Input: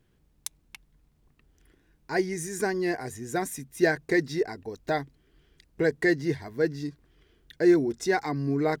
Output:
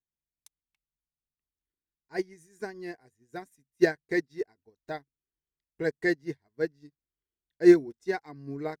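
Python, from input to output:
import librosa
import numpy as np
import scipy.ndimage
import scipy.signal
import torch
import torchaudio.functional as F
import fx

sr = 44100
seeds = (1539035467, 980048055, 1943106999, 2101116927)

y = fx.upward_expand(x, sr, threshold_db=-42.0, expansion=2.5)
y = y * 10.0 ** (4.5 / 20.0)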